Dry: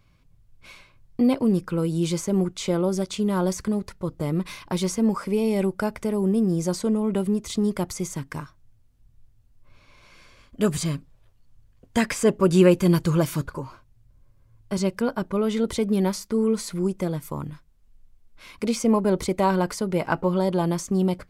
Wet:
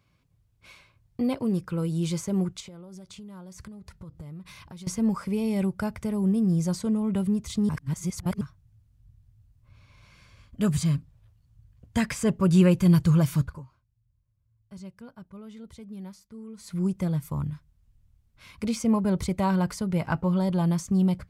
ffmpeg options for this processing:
ffmpeg -i in.wav -filter_complex "[0:a]asettb=1/sr,asplit=3[link_01][link_02][link_03];[link_01]atrim=end=2.604[link_04];[link_02]atrim=start=2.6:end=4.87,asetpts=PTS-STARTPTS,afade=type=in:duration=0.004:curve=qsin,afade=type=out:start_time=2.266:duration=0.004:curve=qsin,acompressor=threshold=-38dB:ratio=6:attack=3.2:release=140:knee=1:detection=peak[link_05];[link_03]atrim=start=4.866[link_06];[link_04][link_05]acrossfade=duration=0.004:curve1=hsin:curve2=qsin[link_07];[link_07][link_06]acrossfade=duration=0.004:curve1=qsin:curve2=hsin,asplit=5[link_08][link_09][link_10][link_11][link_12];[link_08]atrim=end=7.692[link_13];[link_09]atrim=start=7.688:end=8.412,asetpts=PTS-STARTPTS,areverse[link_14];[link_10]atrim=start=8.408:end=13.66,asetpts=PTS-STARTPTS,afade=type=out:start_time=5.002:duration=0.25:silence=0.149624[link_15];[link_11]atrim=start=13.66:end=16.57,asetpts=PTS-STARTPTS,volume=-16.5dB[link_16];[link_12]atrim=start=16.57,asetpts=PTS-STARTPTS,afade=type=in:duration=0.25:silence=0.149624[link_17];[link_13][link_14]acrossfade=duration=0.004:curve1=hsin:curve2=hsin[link_18];[link_15][link_16][link_17]concat=n=3:v=0:a=1[link_19];[link_18][link_19]acrossfade=duration=0.004:curve1=hsin:curve2=hsin,asubboost=boost=8:cutoff=120,highpass=82,volume=-4.5dB" out.wav

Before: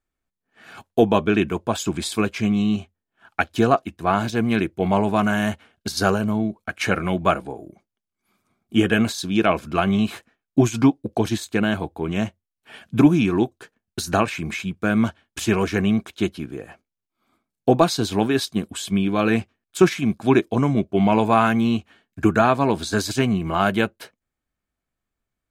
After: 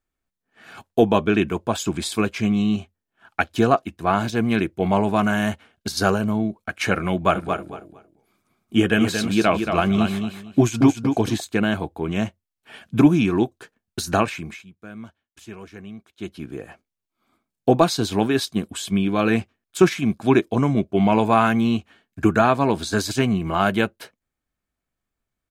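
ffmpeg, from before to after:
ffmpeg -i in.wav -filter_complex "[0:a]asplit=3[link_01][link_02][link_03];[link_01]afade=type=out:start_time=7.33:duration=0.02[link_04];[link_02]aecho=1:1:228|456|684:0.473|0.0994|0.0209,afade=type=in:start_time=7.33:duration=0.02,afade=type=out:start_time=11.39:duration=0.02[link_05];[link_03]afade=type=in:start_time=11.39:duration=0.02[link_06];[link_04][link_05][link_06]amix=inputs=3:normalize=0,asplit=3[link_07][link_08][link_09];[link_07]atrim=end=14.65,asetpts=PTS-STARTPTS,afade=type=out:start_time=14.24:duration=0.41:silence=0.11885[link_10];[link_08]atrim=start=14.65:end=16.15,asetpts=PTS-STARTPTS,volume=-18.5dB[link_11];[link_09]atrim=start=16.15,asetpts=PTS-STARTPTS,afade=type=in:duration=0.41:silence=0.11885[link_12];[link_10][link_11][link_12]concat=n=3:v=0:a=1" out.wav

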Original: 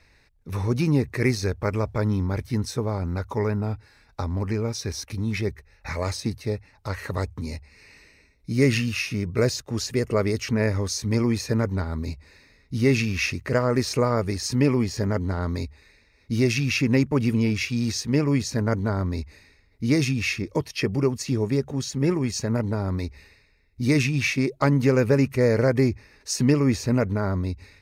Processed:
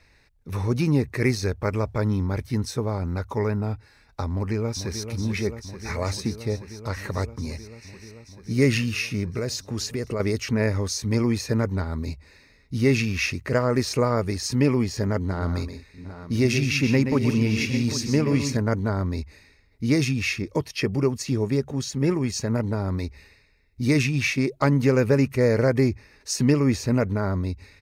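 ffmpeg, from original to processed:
ffmpeg -i in.wav -filter_complex "[0:a]asplit=2[link_01][link_02];[link_02]afade=type=in:start_time=4.32:duration=0.01,afade=type=out:start_time=5.08:duration=0.01,aecho=0:1:440|880|1320|1760|2200|2640|3080|3520|3960|4400|4840|5280:0.354813|0.301591|0.256353|0.2179|0.185215|0.157433|0.133818|0.113745|0.0966833|0.0821808|0.0698537|0.0593756[link_03];[link_01][link_03]amix=inputs=2:normalize=0,asettb=1/sr,asplit=3[link_04][link_05][link_06];[link_04]atrim=end=9.304[link_07];[link_05]atrim=start=9.3:end=10.2,asetpts=PTS-STARTPTS,afade=type=in:duration=0.004:curve=qsin,afade=type=out:start_time=0.896:duration=0.004:curve=qsin,acompressor=threshold=-23dB:ratio=6:attack=3.2:release=140:knee=1:detection=peak[link_08];[link_06]atrim=start=10.196[link_09];[link_07][link_08]acrossfade=duration=0.004:curve1=hsin:curve2=qsin[link_10];[link_10][link_09]acrossfade=duration=0.004:curve1=qsin:curve2=hsin,asettb=1/sr,asplit=3[link_11][link_12][link_13];[link_11]atrim=end=15.184[link_14];[link_12]atrim=start=15.18:end=18.57,asetpts=PTS-STARTPTS,afade=type=in:duration=0.004:curve=qsin,afade=type=out:start_time=3.386:duration=0.004:curve=qsin,aecho=1:1:126|175|757|798:0.376|0.15|0.119|0.237,atrim=end_sample=149499[link_15];[link_13]atrim=start=18.566[link_16];[link_14][link_15]acrossfade=duration=0.004:curve1=hsin:curve2=qsin[link_17];[link_17][link_16]acrossfade=duration=0.004:curve1=qsin:curve2=hsin" out.wav

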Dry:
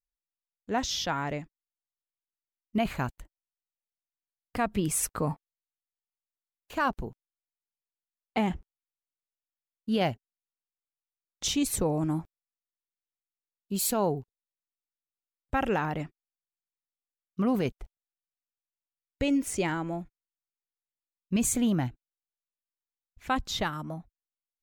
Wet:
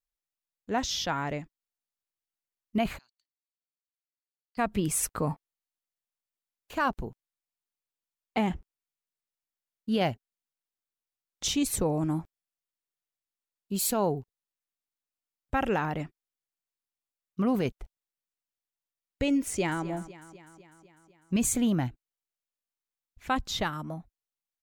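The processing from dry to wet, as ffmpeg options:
ffmpeg -i in.wav -filter_complex "[0:a]asplit=3[link_01][link_02][link_03];[link_01]afade=type=out:start_time=2.97:duration=0.02[link_04];[link_02]bandpass=frequency=4500:width_type=q:width=17,afade=type=in:start_time=2.97:duration=0.02,afade=type=out:start_time=4.57:duration=0.02[link_05];[link_03]afade=type=in:start_time=4.57:duration=0.02[link_06];[link_04][link_05][link_06]amix=inputs=3:normalize=0,asplit=2[link_07][link_08];[link_08]afade=type=in:start_time=19.46:duration=0.01,afade=type=out:start_time=19.86:duration=0.01,aecho=0:1:250|500|750|1000|1250|1500|1750:0.158489|0.103018|0.0669617|0.0435251|0.0282913|0.0183894|0.0119531[link_09];[link_07][link_09]amix=inputs=2:normalize=0" out.wav

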